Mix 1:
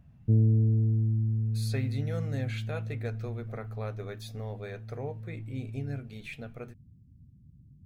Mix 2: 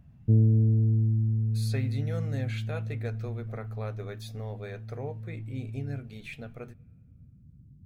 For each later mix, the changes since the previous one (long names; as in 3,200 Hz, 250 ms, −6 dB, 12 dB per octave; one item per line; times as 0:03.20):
background: send on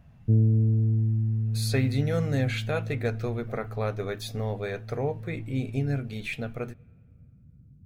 speech +8.5 dB